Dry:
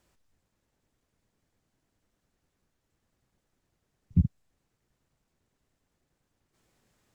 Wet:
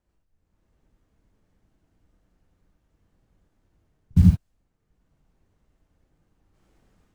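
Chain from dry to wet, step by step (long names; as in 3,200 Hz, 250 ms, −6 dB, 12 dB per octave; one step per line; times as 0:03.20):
low-shelf EQ 75 Hz +11 dB
automatic gain control gain up to 12 dB
in parallel at −3.5 dB: bit reduction 5 bits
on the sum: reverb whose tail is shaped and stops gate 110 ms rising, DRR −0.5 dB
one half of a high-frequency compander decoder only
level −8.5 dB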